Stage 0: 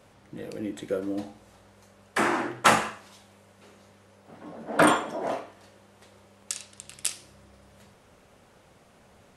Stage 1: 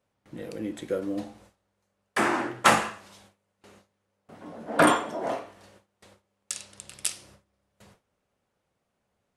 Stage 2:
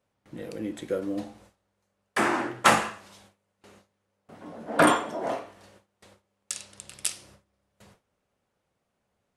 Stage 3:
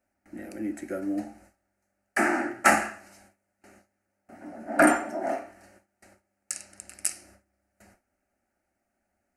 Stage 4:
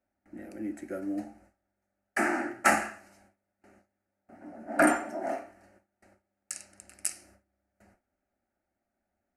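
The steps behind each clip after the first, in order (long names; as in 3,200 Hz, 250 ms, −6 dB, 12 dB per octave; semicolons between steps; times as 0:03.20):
noise gate with hold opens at −43 dBFS
no processing that can be heard
phaser with its sweep stopped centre 700 Hz, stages 8; level +2.5 dB
one half of a high-frequency compander decoder only; level −3.5 dB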